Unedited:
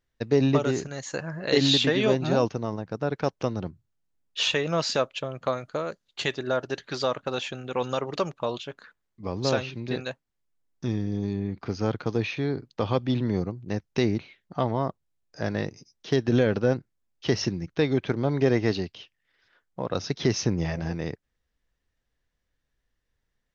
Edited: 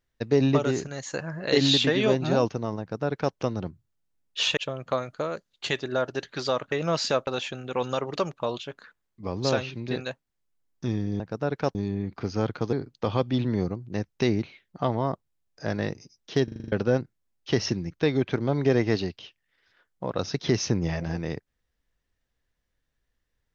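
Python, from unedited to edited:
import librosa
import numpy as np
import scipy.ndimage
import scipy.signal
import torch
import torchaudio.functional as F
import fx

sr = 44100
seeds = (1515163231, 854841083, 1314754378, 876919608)

y = fx.edit(x, sr, fx.duplicate(start_s=2.8, length_s=0.55, to_s=11.2),
    fx.move(start_s=4.57, length_s=0.55, to_s=7.27),
    fx.cut(start_s=12.18, length_s=0.31),
    fx.stutter_over(start_s=16.2, slice_s=0.04, count=7), tone=tone)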